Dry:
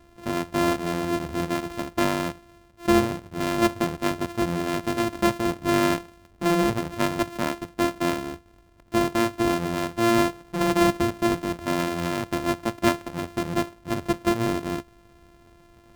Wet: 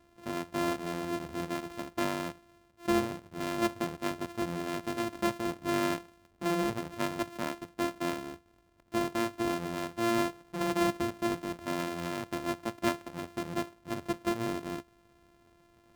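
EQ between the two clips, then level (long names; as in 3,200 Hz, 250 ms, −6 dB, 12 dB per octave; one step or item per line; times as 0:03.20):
low-shelf EQ 77 Hz −9.5 dB
−8.0 dB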